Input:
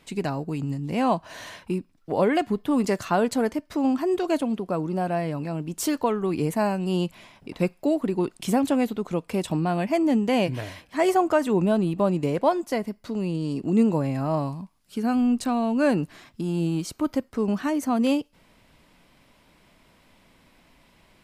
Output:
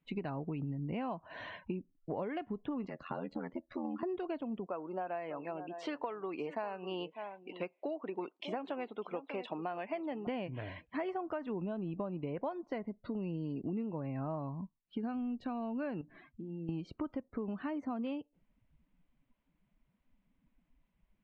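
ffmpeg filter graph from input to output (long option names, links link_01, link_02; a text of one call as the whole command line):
ffmpeg -i in.wav -filter_complex "[0:a]asettb=1/sr,asplit=3[link_01][link_02][link_03];[link_01]atrim=end=2.874[link_04];[link_02]atrim=start=2.87:end=4.03,asetpts=PTS-STARTPTS,afade=type=in:duration=0.004:curve=qsin,afade=type=out:start_time=1.156:duration=0.004:curve=qsin,aecho=1:1:3.6:0.55,atrim=end_sample=51156,acrossover=split=100|810|4000[link_05][link_06][link_07][link_08];[link_05]acompressor=threshold=-58dB:ratio=3[link_09];[link_06]acompressor=threshold=-32dB:ratio=3[link_10];[link_07]acompressor=threshold=-40dB:ratio=3[link_11];[link_08]acompressor=threshold=-43dB:ratio=3[link_12];[link_09][link_10][link_11][link_12]amix=inputs=4:normalize=0,aeval=exprs='val(0)*sin(2*PI*42*n/s)':channel_layout=same[link_13];[link_03]atrim=start=4.026[link_14];[link_04][link_13]acrossfade=duration=0.004:curve1=hsin:curve2=qsin[link_15];[link_15][link_14]acrossfade=duration=0.004:curve1=qsin:curve2=hsin,asettb=1/sr,asplit=3[link_16][link_17][link_18];[link_16]atrim=end=4.664[link_19];[link_17]atrim=start=4.66:end=10.27,asetpts=PTS-STARTPTS,afade=type=in:duration=0.004:curve=qsin,afade=type=out:start_time=5.606:duration=0.004:curve=qsin,highpass=480,aecho=1:1:597:0.188,atrim=end_sample=247401[link_20];[link_18]atrim=start=10.266[link_21];[link_19][link_20]acrossfade=duration=0.004:curve1=hsin:curve2=qsin[link_22];[link_22][link_21]acrossfade=duration=0.004:curve1=qsin:curve2=hsin,asettb=1/sr,asplit=3[link_23][link_24][link_25];[link_23]atrim=end=16.014[link_26];[link_24]atrim=start=16.01:end=16.69,asetpts=PTS-STARTPTS,afade=type=in:duration=0.004:curve=qsin,afade=type=out:start_time=0.676:duration=0.004:curve=qsin,acompressor=threshold=-38dB:ratio=4:attack=3.2:release=140:knee=1:detection=peak,bandreject=frequency=60:width_type=h:width=6,bandreject=frequency=120:width_type=h:width=6,bandreject=frequency=180:width_type=h:width=6,bandreject=frequency=240:width_type=h:width=6,bandreject=frequency=300:width_type=h:width=6[link_27];[link_25]atrim=start=16.686[link_28];[link_26][link_27]acrossfade=duration=0.004:curve1=hsin:curve2=qsin[link_29];[link_29][link_28]acrossfade=duration=0.004:curve1=qsin:curve2=hsin,afftdn=noise_reduction=23:noise_floor=-45,lowpass=frequency=3200:width=0.5412,lowpass=frequency=3200:width=1.3066,acompressor=threshold=-31dB:ratio=12,volume=-3.5dB" out.wav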